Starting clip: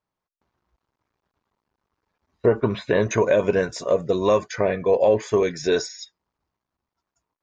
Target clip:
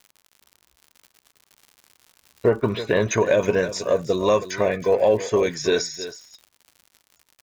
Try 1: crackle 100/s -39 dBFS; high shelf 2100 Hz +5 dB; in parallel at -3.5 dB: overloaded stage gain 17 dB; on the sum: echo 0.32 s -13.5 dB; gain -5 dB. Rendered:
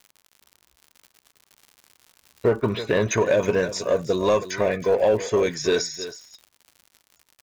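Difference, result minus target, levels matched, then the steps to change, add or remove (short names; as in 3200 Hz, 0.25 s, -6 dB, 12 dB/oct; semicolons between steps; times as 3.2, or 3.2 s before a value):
overloaded stage: distortion +21 dB
change: overloaded stage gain 9.5 dB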